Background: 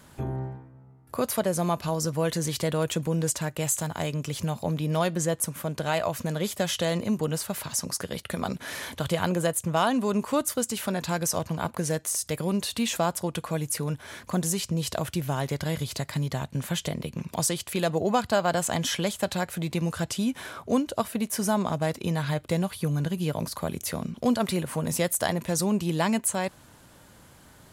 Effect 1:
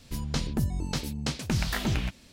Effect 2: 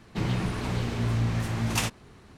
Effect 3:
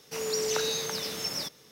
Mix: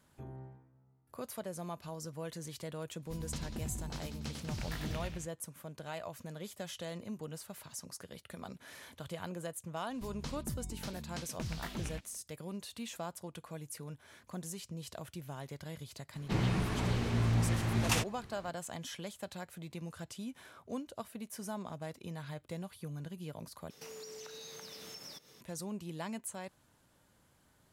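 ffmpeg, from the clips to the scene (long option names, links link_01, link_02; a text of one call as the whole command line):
ffmpeg -i bed.wav -i cue0.wav -i cue1.wav -i cue2.wav -filter_complex "[1:a]asplit=2[link_01][link_02];[0:a]volume=-16dB[link_03];[link_01]aecho=1:1:96|192|288|384|480|576|672:0.562|0.304|0.164|0.0885|0.0478|0.0258|0.0139[link_04];[3:a]acompressor=threshold=-39dB:ratio=16:attack=1.4:release=331:knee=1:detection=peak[link_05];[link_03]asplit=2[link_06][link_07];[link_06]atrim=end=23.704[link_08];[link_05]atrim=end=1.71,asetpts=PTS-STARTPTS,volume=-3.5dB[link_09];[link_07]atrim=start=25.406[link_10];[link_04]atrim=end=2.32,asetpts=PTS-STARTPTS,volume=-13.5dB,afade=type=in:duration=0.1,afade=type=out:start_time=2.22:duration=0.1,adelay=2990[link_11];[link_02]atrim=end=2.32,asetpts=PTS-STARTPTS,volume=-13dB,afade=type=in:duration=0.004:curve=hsin,afade=type=out:start_time=2.316:duration=0.004:curve=hsin,adelay=9900[link_12];[2:a]atrim=end=2.37,asetpts=PTS-STARTPTS,volume=-3.5dB,afade=type=in:duration=0.004:curve=hsin,afade=type=out:start_time=2.366:duration=0.004:curve=hsin,adelay=16140[link_13];[link_08][link_09]acrossfade=duration=0.004:curve1=hsin:curve2=hsin[link_14];[link_14][link_10]acrossfade=duration=0.004:curve1=hsin:curve2=hsin[link_15];[link_15][link_11][link_12][link_13]amix=inputs=4:normalize=0" out.wav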